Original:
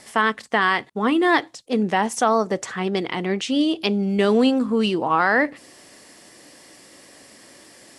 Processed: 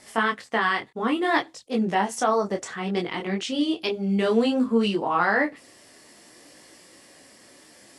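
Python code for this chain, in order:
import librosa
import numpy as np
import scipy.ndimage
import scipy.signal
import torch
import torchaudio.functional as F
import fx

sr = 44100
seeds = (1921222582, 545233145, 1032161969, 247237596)

y = fx.detune_double(x, sr, cents=21)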